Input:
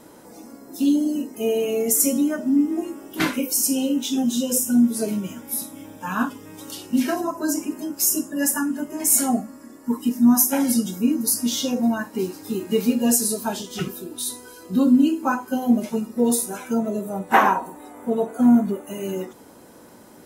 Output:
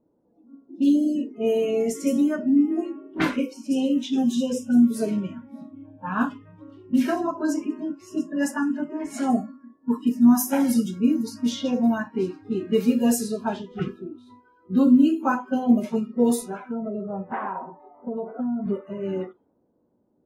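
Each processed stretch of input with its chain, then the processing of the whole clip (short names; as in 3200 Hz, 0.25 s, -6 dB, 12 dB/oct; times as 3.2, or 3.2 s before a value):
16.7–18.66 compressor, threshold -25 dBFS + high shelf 4600 Hz -6.5 dB
whole clip: spectral noise reduction 19 dB; high shelf 3900 Hz -10.5 dB; low-pass opened by the level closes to 550 Hz, open at -17.5 dBFS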